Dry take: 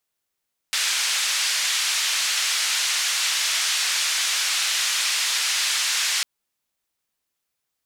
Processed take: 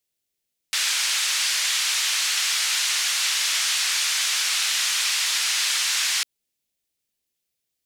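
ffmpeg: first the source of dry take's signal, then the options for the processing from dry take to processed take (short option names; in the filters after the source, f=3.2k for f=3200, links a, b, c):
-f lavfi -i "anoisesrc=c=white:d=5.5:r=44100:seed=1,highpass=f=1700,lowpass=f=6300,volume=-11.6dB"
-filter_complex "[0:a]acrossover=split=710|1800[a][b][c];[a]alimiter=level_in=25dB:limit=-24dB:level=0:latency=1,volume=-25dB[d];[b]aeval=exprs='sgn(val(0))*max(abs(val(0))-0.00251,0)':c=same[e];[d][e][c]amix=inputs=3:normalize=0"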